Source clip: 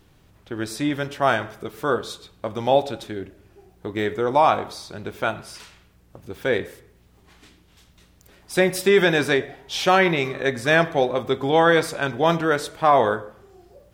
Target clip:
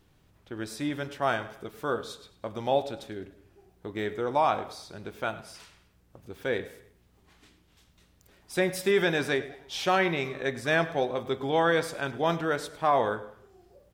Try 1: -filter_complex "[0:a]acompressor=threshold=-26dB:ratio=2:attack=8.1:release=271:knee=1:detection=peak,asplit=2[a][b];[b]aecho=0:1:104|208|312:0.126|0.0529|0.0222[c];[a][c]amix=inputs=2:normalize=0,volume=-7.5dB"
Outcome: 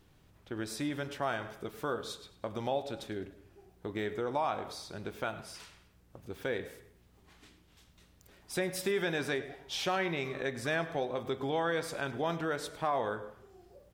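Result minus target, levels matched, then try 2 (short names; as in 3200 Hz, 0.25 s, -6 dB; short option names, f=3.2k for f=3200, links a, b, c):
compressor: peak gain reduction +8.5 dB
-filter_complex "[0:a]asplit=2[a][b];[b]aecho=0:1:104|208|312:0.126|0.0529|0.0222[c];[a][c]amix=inputs=2:normalize=0,volume=-7.5dB"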